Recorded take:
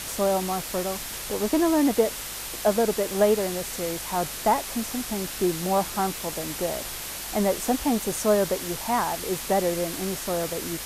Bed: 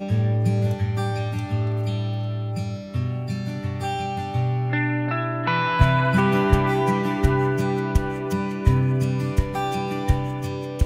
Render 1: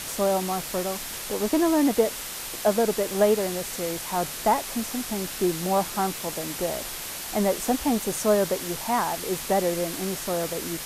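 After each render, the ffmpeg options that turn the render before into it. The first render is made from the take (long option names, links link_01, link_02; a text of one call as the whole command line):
ffmpeg -i in.wav -af "bandreject=frequency=50:width_type=h:width=4,bandreject=frequency=100:width_type=h:width=4,bandreject=frequency=150:width_type=h:width=4" out.wav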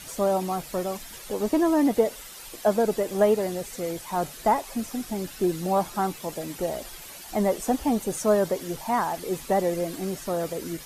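ffmpeg -i in.wav -af "afftdn=noise_reduction=11:noise_floor=-35" out.wav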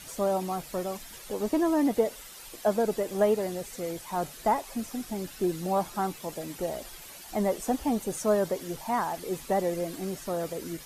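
ffmpeg -i in.wav -af "volume=-3.5dB" out.wav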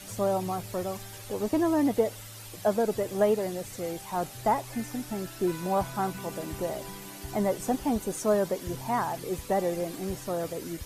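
ffmpeg -i in.wav -i bed.wav -filter_complex "[1:a]volume=-22.5dB[link_01];[0:a][link_01]amix=inputs=2:normalize=0" out.wav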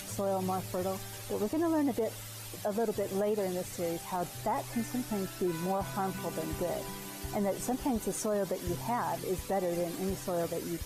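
ffmpeg -i in.wav -af "alimiter=limit=-23.5dB:level=0:latency=1:release=68,acompressor=mode=upward:threshold=-41dB:ratio=2.5" out.wav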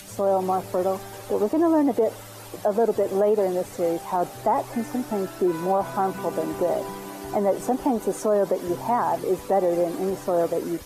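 ffmpeg -i in.wav -filter_complex "[0:a]acrossover=split=240|1300|2200[link_01][link_02][link_03][link_04];[link_01]alimiter=level_in=14dB:limit=-24dB:level=0:latency=1,volume=-14dB[link_05];[link_02]dynaudnorm=framelen=110:gausssize=3:maxgain=11.5dB[link_06];[link_05][link_06][link_03][link_04]amix=inputs=4:normalize=0" out.wav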